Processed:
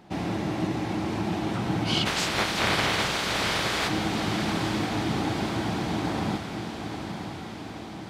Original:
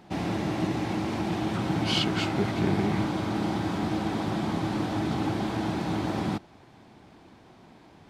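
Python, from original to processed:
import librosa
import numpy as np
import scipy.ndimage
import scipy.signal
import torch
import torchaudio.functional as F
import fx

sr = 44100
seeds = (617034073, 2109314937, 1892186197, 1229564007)

y = fx.spec_clip(x, sr, under_db=28, at=(2.05, 3.87), fade=0.02)
y = fx.echo_diffused(y, sr, ms=930, feedback_pct=61, wet_db=-7)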